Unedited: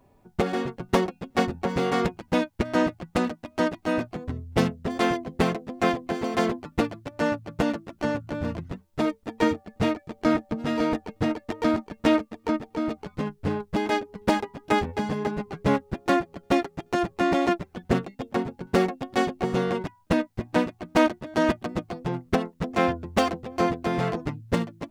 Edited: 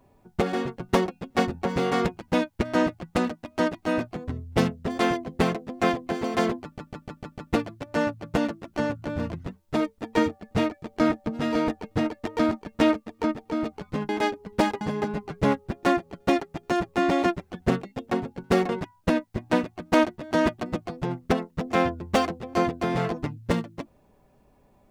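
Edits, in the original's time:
0:06.63: stutter 0.15 s, 6 plays
0:13.34–0:13.78: remove
0:14.50–0:15.04: remove
0:18.92–0:19.72: remove

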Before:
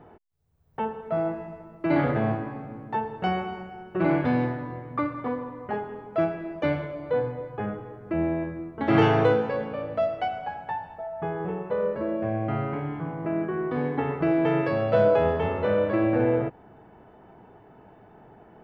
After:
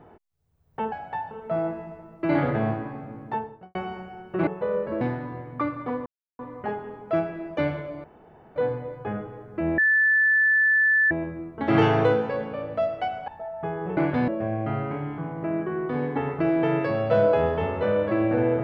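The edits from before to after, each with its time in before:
0:02.88–0:03.36: fade out and dull
0:04.08–0:04.39: swap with 0:11.56–0:12.10
0:05.44: splice in silence 0.33 s
0:07.09: splice in room tone 0.52 s
0:08.31: insert tone 1,750 Hz −16.5 dBFS 1.33 s
0:10.48–0:10.87: move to 0:00.92

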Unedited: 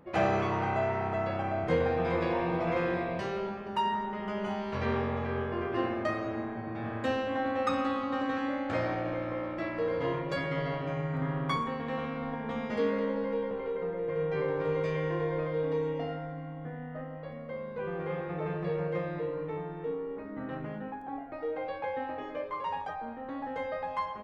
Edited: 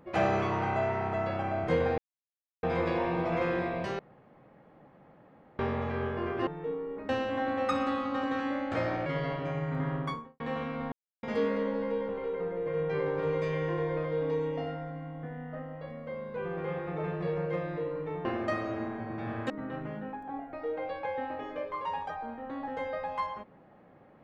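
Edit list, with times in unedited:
0:01.98: splice in silence 0.65 s
0:03.34–0:04.94: fill with room tone
0:05.82–0:07.07: swap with 0:19.67–0:20.29
0:09.04–0:10.48: remove
0:11.34–0:11.82: fade out and dull
0:12.34–0:12.65: silence

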